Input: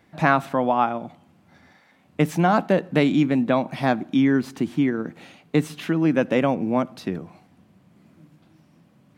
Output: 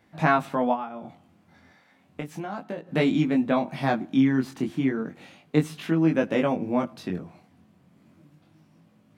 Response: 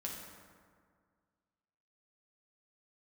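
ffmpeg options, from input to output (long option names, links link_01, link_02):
-filter_complex "[0:a]asplit=3[link_01][link_02][link_03];[link_01]afade=type=out:start_time=0.73:duration=0.02[link_04];[link_02]acompressor=threshold=-27dB:ratio=6,afade=type=in:start_time=0.73:duration=0.02,afade=type=out:start_time=2.87:duration=0.02[link_05];[link_03]afade=type=in:start_time=2.87:duration=0.02[link_06];[link_04][link_05][link_06]amix=inputs=3:normalize=0,flanger=delay=18.5:depth=4.7:speed=0.33"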